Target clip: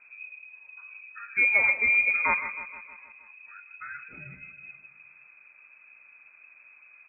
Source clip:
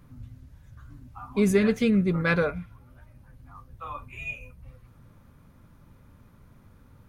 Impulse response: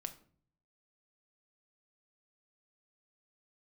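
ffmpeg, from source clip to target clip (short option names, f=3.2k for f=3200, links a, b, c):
-filter_complex "[0:a]asettb=1/sr,asplit=3[a][b][c];[a]atrim=end=2.364[d];[b]atrim=start=2.36:end=4.32,asetpts=PTS-STARTPTS,afade=t=in:d=0.004:c=qsin,afade=t=out:st=1.956:d=0.004:c=qsin,acompressor=threshold=-35dB:ratio=3[e];[c]atrim=start=4.316[f];[d][e]acrossfade=d=0.004:c1=hsin:c2=qsin[g];[g][f]acrossfade=d=0.004:c1=qsin:c2=hsin,aecho=1:1:156|312|468|624|780|936:0.211|0.127|0.0761|0.0457|0.0274|0.0164,lowpass=f=2.2k:t=q:w=0.5098,lowpass=f=2.2k:t=q:w=0.6013,lowpass=f=2.2k:t=q:w=0.9,lowpass=f=2.2k:t=q:w=2.563,afreqshift=-2600,volume=-1dB"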